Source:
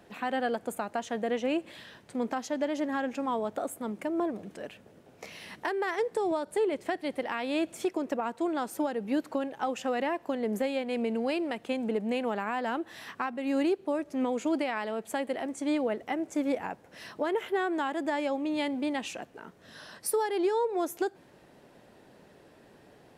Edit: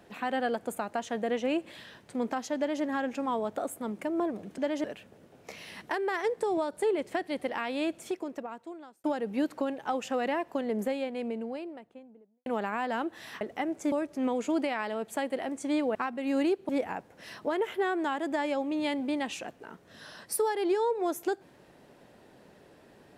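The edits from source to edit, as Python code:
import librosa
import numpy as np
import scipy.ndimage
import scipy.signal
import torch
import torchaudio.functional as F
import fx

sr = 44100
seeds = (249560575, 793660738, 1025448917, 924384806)

y = fx.studio_fade_out(x, sr, start_s=10.23, length_s=1.97)
y = fx.edit(y, sr, fx.duplicate(start_s=2.57, length_s=0.26, to_s=4.58),
    fx.fade_out_span(start_s=7.36, length_s=1.42),
    fx.swap(start_s=13.15, length_s=0.74, other_s=15.92, other_length_s=0.51), tone=tone)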